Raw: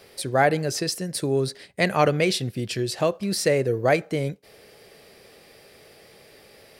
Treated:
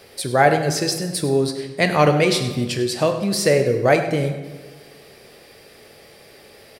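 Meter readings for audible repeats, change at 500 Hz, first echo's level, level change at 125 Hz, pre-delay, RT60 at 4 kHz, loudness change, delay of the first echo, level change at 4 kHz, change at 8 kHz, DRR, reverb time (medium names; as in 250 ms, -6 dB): 1, +4.5 dB, -14.5 dB, +4.5 dB, 6 ms, 0.95 s, +4.5 dB, 100 ms, +4.5 dB, +4.5 dB, 6.0 dB, 1.4 s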